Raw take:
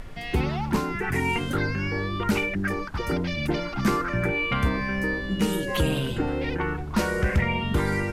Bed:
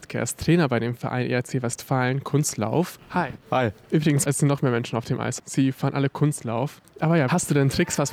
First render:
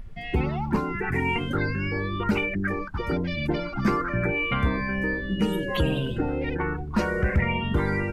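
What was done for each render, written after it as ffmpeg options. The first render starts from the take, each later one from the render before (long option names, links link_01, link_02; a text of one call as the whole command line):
ffmpeg -i in.wav -af "afftdn=noise_reduction=14:noise_floor=-34" out.wav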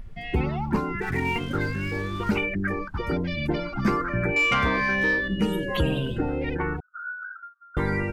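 ffmpeg -i in.wav -filter_complex "[0:a]asettb=1/sr,asplit=3[link_01][link_02][link_03];[link_01]atrim=end=1.014[link_04];[link_02]atrim=start=1.01:end=2.36,asetpts=PTS-STARTPTS,afade=type=in:duration=0.004:curve=qsin,afade=type=out:start_time=1.346:duration=0.004:curve=qsin,aeval=exprs='sgn(val(0))*max(abs(val(0))-0.00668,0)':channel_layout=same[link_05];[link_03]atrim=start=2.356[link_06];[link_04][link_05]acrossfade=duration=0.004:curve1=hsin:curve2=qsin[link_07];[link_07][link_06]acrossfade=duration=0.004:curve1=qsin:curve2=hsin,asettb=1/sr,asplit=3[link_08][link_09][link_10];[link_08]atrim=end=4.364[link_11];[link_09]atrim=start=4.36:end=5.28,asetpts=PTS-STARTPTS,afade=type=in:duration=0.004:curve=qsin,afade=type=out:start_time=0.916:duration=0.004:curve=qsin,asplit=2[link_12][link_13];[link_13]highpass=frequency=720:poles=1,volume=14dB,asoftclip=type=tanh:threshold=-12.5dB[link_14];[link_12][link_14]amix=inputs=2:normalize=0,lowpass=frequency=5500:poles=1,volume=-6dB[link_15];[link_10]atrim=start=5.276[link_16];[link_11][link_15]acrossfade=duration=0.004:curve1=hsin:curve2=qsin[link_17];[link_17][link_16]acrossfade=duration=0.004:curve1=qsin:curve2=hsin,asettb=1/sr,asplit=3[link_18][link_19][link_20];[link_18]atrim=end=6.804[link_21];[link_19]atrim=start=6.8:end=7.77,asetpts=PTS-STARTPTS,afade=type=in:duration=0.004:curve=qsin,afade=type=out:start_time=0.966:duration=0.004:curve=qsin,asuperpass=centerf=1400:order=12:qfactor=4.8[link_22];[link_20]atrim=start=7.766[link_23];[link_21][link_22]acrossfade=duration=0.004:curve1=hsin:curve2=qsin[link_24];[link_24][link_23]acrossfade=duration=0.004:curve1=qsin:curve2=hsin" out.wav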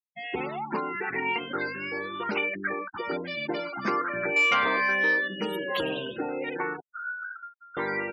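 ffmpeg -i in.wav -af "highpass=390,afftfilt=real='re*gte(hypot(re,im),0.01)':imag='im*gte(hypot(re,im),0.01)':win_size=1024:overlap=0.75" out.wav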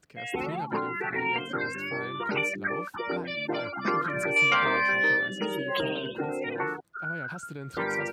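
ffmpeg -i in.wav -i bed.wav -filter_complex "[1:a]volume=-19.5dB[link_01];[0:a][link_01]amix=inputs=2:normalize=0" out.wav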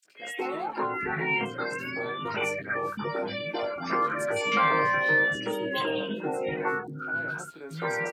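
ffmpeg -i in.wav -filter_complex "[0:a]asplit=2[link_01][link_02];[link_02]adelay=19,volume=-3.5dB[link_03];[link_01][link_03]amix=inputs=2:normalize=0,acrossover=split=260|2500[link_04][link_05][link_06];[link_05]adelay=50[link_07];[link_04]adelay=680[link_08];[link_08][link_07][link_06]amix=inputs=3:normalize=0" out.wav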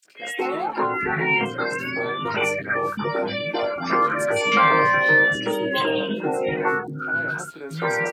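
ffmpeg -i in.wav -af "volume=6.5dB" out.wav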